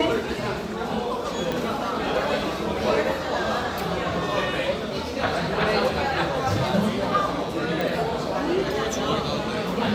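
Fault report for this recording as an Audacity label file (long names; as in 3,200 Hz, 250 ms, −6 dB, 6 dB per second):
1.520000	1.520000	click −13 dBFS
7.810000	7.810000	click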